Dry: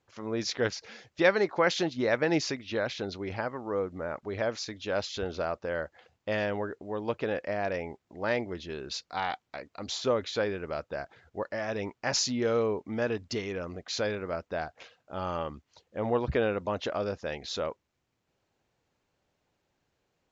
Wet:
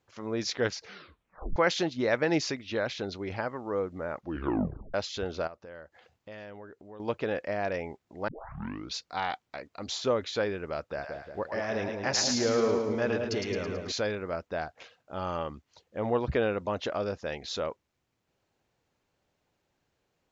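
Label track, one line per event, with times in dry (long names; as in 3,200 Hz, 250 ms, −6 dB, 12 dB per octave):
0.850000	0.850000	tape stop 0.71 s
4.160000	4.160000	tape stop 0.78 s
5.470000	7.000000	downward compressor 2 to 1, threshold −53 dBFS
8.280000	8.280000	tape start 0.67 s
10.800000	13.920000	echo with a time of its own for lows and highs split 720 Hz, lows 178 ms, highs 109 ms, level −3.5 dB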